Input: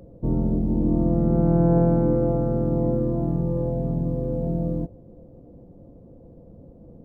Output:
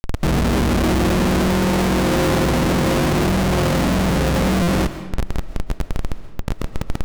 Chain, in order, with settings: median filter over 41 samples; band-stop 1.4 kHz; in parallel at +1.5 dB: compression, threshold -30 dBFS, peak gain reduction 14 dB; on the sum: peak limiter -14 dBFS, peak gain reduction 6.5 dB; frequency shift +20 Hz; Schmitt trigger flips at -32 dBFS; on a send at -11.5 dB: reverberation RT60 1.1 s, pre-delay 90 ms; on the sum: buffer glitch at 4.62 s, samples 256, times 8; loudspeaker Doppler distortion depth 0.22 ms; trim +6 dB

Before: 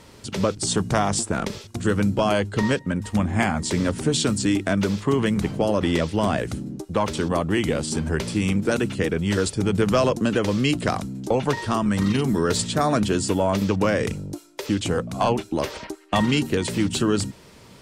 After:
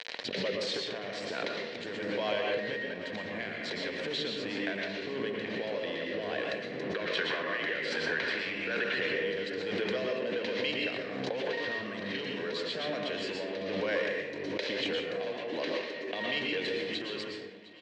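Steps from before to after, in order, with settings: tracing distortion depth 0.024 ms; 6.84–8.99 s: peaking EQ 1.5 kHz +14 dB 1.5 oct; peak limiter -12.5 dBFS, peak gain reduction 9.5 dB; compression 5:1, threshold -28 dBFS, peak gain reduction 10 dB; rotary cabinet horn 1.2 Hz; crossover distortion -44 dBFS; cabinet simulation 440–4600 Hz, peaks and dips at 480 Hz +8 dB, 820 Hz -7 dB, 1.3 kHz -7 dB, 1.9 kHz +9 dB, 2.8 kHz +4 dB, 4 kHz +7 dB; feedback delay 709 ms, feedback 50%, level -19 dB; reverberation RT60 0.85 s, pre-delay 107 ms, DRR 0 dB; swell ahead of each attack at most 28 dB/s

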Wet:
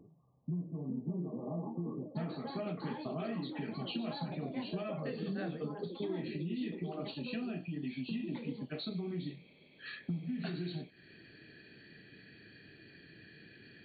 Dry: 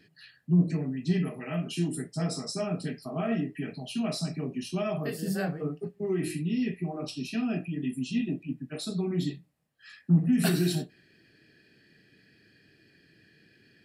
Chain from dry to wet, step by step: compression 6:1, threshold -42 dBFS, peak gain reduction 23 dB; ever faster or slower copies 530 ms, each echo +5 st, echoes 2, each echo -6 dB; brick-wall FIR low-pass 1.2 kHz, from 2.15 s 4.6 kHz; trim +4.5 dB

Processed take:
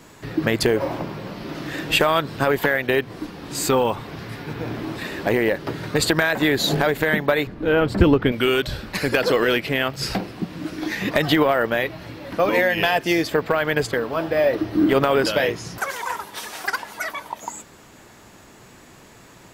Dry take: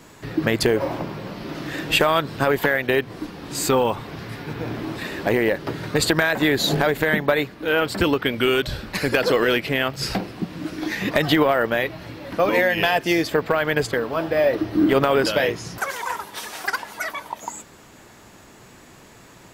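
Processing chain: 7.47–8.32 s: tilt EQ -3 dB/octave

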